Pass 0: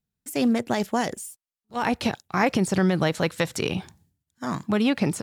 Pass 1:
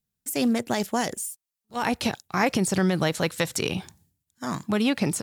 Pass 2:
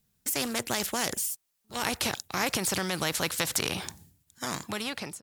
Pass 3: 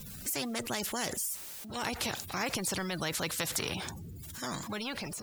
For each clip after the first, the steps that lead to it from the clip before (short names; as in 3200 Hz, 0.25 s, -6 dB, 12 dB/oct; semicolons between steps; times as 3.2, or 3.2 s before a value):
high shelf 4900 Hz +8.5 dB; gain -1.5 dB
ending faded out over 0.85 s; spectral compressor 2:1
zero-crossing step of -30.5 dBFS; spectral gate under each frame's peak -20 dB strong; modulation noise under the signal 24 dB; gain -6.5 dB